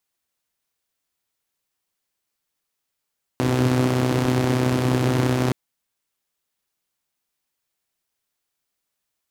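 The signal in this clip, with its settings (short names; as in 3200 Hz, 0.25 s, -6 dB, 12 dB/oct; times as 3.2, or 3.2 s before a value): four-cylinder engine model, steady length 2.12 s, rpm 3800, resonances 130/270 Hz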